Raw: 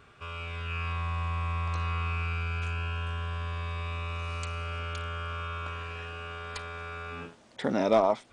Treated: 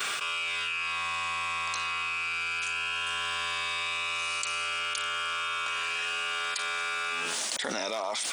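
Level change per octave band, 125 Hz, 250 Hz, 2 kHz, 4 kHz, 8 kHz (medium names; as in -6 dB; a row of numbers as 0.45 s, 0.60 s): under -20 dB, under -10 dB, +9.0 dB, +12.5 dB, +19.0 dB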